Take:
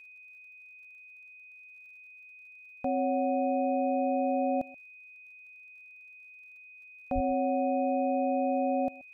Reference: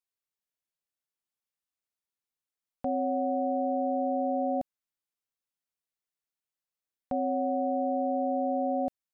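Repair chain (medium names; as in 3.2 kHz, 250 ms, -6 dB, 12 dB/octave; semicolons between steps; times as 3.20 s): de-click; band-stop 2.5 kHz, Q 30; 7.14–7.26 s: high-pass 140 Hz 24 dB/octave; inverse comb 130 ms -21 dB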